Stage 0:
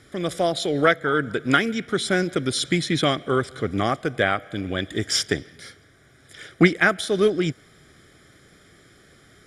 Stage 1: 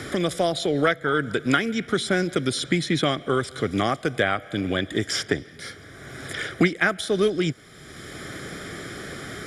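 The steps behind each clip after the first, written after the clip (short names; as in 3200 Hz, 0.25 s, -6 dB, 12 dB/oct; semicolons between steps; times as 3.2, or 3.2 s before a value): three-band squash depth 70%; gain -1 dB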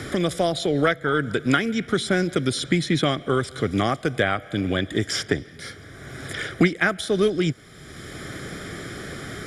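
low shelf 170 Hz +5 dB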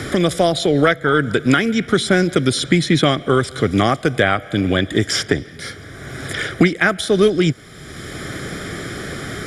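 maximiser +7.5 dB; gain -1 dB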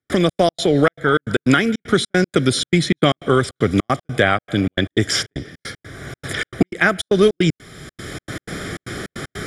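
step gate ".xx.x.xxx" 154 bpm -60 dB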